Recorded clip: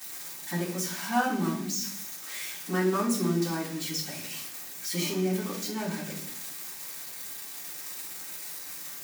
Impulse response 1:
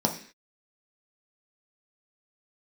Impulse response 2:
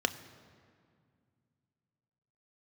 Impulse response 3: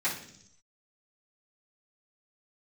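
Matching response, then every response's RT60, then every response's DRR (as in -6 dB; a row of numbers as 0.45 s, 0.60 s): 3; 0.45 s, 2.1 s, 0.70 s; 1.0 dB, 9.5 dB, -14.5 dB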